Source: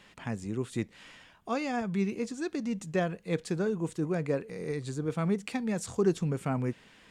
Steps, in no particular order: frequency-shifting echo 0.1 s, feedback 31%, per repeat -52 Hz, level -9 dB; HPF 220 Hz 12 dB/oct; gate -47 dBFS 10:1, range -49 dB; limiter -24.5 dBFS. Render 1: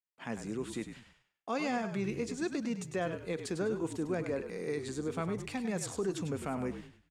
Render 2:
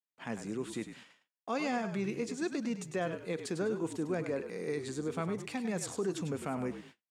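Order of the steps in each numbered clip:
gate > limiter > HPF > frequency-shifting echo; limiter > frequency-shifting echo > gate > HPF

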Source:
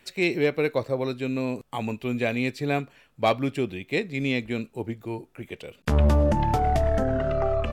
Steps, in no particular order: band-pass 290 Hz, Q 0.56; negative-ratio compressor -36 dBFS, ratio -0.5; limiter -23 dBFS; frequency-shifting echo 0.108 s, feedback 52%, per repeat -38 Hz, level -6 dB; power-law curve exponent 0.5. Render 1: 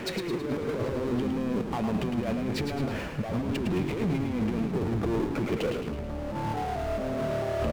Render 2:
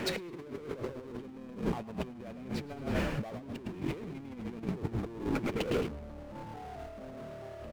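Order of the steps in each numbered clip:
band-pass > negative-ratio compressor > power-law curve > limiter > frequency-shifting echo; limiter > band-pass > power-law curve > frequency-shifting echo > negative-ratio compressor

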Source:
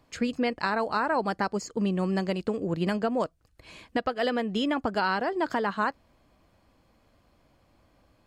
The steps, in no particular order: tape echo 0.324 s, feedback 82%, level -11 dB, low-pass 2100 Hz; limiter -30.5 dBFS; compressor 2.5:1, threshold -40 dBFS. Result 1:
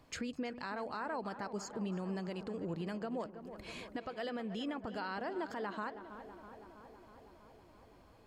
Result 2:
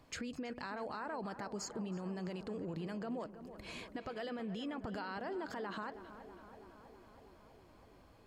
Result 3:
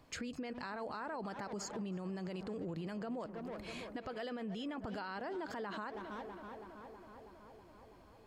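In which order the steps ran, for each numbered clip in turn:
compressor > tape echo > limiter; limiter > compressor > tape echo; tape echo > limiter > compressor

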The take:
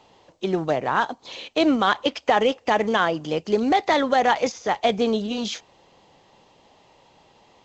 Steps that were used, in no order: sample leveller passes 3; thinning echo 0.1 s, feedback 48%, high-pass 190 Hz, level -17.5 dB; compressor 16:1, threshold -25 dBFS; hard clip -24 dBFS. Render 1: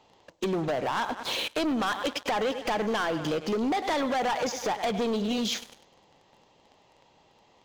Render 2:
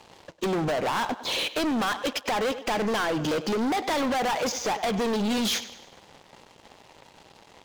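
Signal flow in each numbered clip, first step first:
thinning echo > sample leveller > compressor > hard clip; compressor > sample leveller > thinning echo > hard clip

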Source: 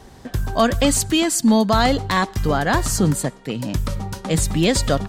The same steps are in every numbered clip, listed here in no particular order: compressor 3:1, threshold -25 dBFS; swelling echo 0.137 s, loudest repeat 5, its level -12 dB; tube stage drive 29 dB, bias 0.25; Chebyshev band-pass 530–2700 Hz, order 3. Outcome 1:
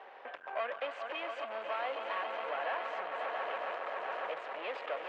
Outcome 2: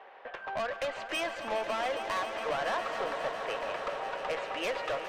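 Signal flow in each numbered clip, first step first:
swelling echo > compressor > tube stage > Chebyshev band-pass; Chebyshev band-pass > compressor > tube stage > swelling echo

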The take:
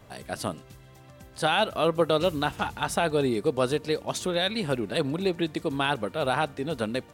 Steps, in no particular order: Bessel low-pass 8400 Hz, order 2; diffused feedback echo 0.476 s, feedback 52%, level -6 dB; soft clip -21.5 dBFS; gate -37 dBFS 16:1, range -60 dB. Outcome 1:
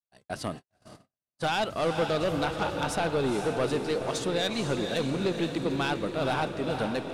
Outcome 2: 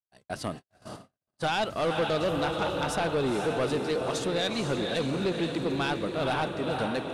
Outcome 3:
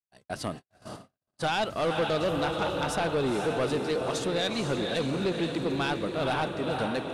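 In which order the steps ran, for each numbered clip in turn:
Bessel low-pass > soft clip > diffused feedback echo > gate; diffused feedback echo > soft clip > Bessel low-pass > gate; diffused feedback echo > soft clip > gate > Bessel low-pass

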